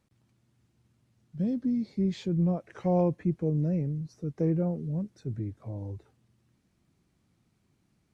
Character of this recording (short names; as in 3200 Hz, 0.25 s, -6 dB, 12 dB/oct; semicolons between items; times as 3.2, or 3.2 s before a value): noise floor -72 dBFS; spectral tilt -7.5 dB/oct